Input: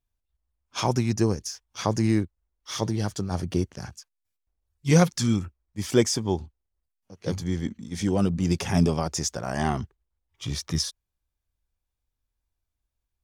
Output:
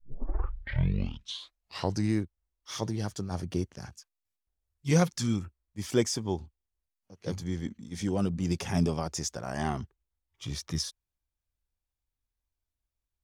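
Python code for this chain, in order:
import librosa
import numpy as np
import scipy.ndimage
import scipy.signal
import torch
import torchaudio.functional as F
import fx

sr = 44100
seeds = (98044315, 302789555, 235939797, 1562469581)

y = fx.tape_start_head(x, sr, length_s=2.14)
y = F.gain(torch.from_numpy(y), -5.5).numpy()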